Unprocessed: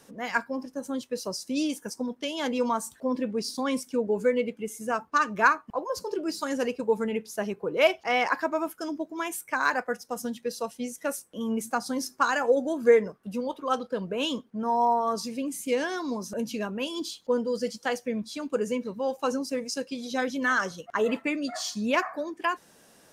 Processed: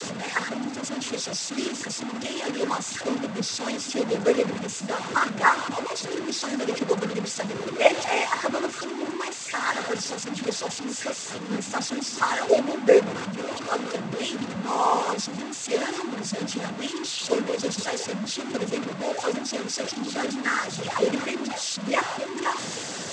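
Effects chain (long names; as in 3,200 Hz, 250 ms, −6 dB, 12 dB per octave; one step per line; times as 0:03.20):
linear delta modulator 64 kbit/s, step −23.5 dBFS
cochlear-implant simulation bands 16
multiband upward and downward expander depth 40%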